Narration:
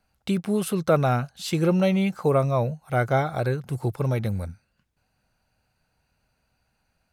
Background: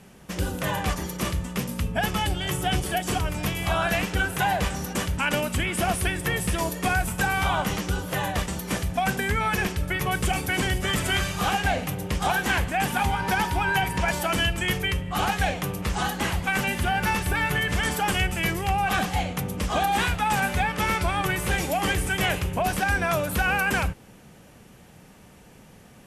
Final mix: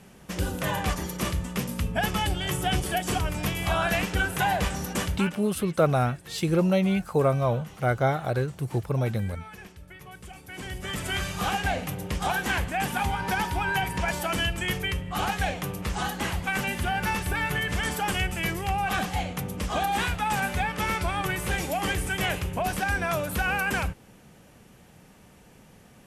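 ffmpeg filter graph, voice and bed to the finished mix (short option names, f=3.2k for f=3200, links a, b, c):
-filter_complex "[0:a]adelay=4900,volume=-1.5dB[a];[1:a]volume=15.5dB,afade=t=out:st=5.09:d=0.25:silence=0.11885,afade=t=in:st=10.43:d=0.94:silence=0.149624[b];[a][b]amix=inputs=2:normalize=0"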